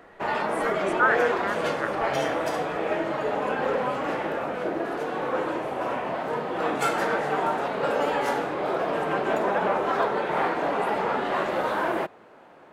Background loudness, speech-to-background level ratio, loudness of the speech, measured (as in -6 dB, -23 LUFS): -26.5 LUFS, -3.0 dB, -29.5 LUFS